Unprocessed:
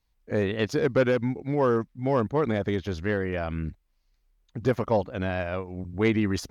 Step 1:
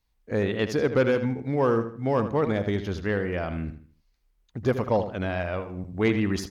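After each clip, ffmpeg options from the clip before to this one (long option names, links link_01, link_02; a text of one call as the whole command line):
ffmpeg -i in.wav -filter_complex "[0:a]asplit=2[link_01][link_02];[link_02]adelay=78,lowpass=frequency=4700:poles=1,volume=-10dB,asplit=2[link_03][link_04];[link_04]adelay=78,lowpass=frequency=4700:poles=1,volume=0.35,asplit=2[link_05][link_06];[link_06]adelay=78,lowpass=frequency=4700:poles=1,volume=0.35,asplit=2[link_07][link_08];[link_08]adelay=78,lowpass=frequency=4700:poles=1,volume=0.35[link_09];[link_01][link_03][link_05][link_07][link_09]amix=inputs=5:normalize=0" out.wav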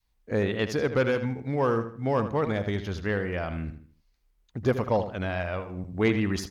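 ffmpeg -i in.wav -af "adynamicequalizer=threshold=0.0178:dfrequency=320:dqfactor=0.75:tfrequency=320:tqfactor=0.75:attack=5:release=100:ratio=0.375:range=2.5:mode=cutabove:tftype=bell" out.wav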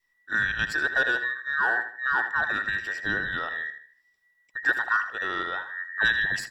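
ffmpeg -i in.wav -af "afftfilt=real='real(if(between(b,1,1012),(2*floor((b-1)/92)+1)*92-b,b),0)':imag='imag(if(between(b,1,1012),(2*floor((b-1)/92)+1)*92-b,b),0)*if(between(b,1,1012),-1,1)':win_size=2048:overlap=0.75" out.wav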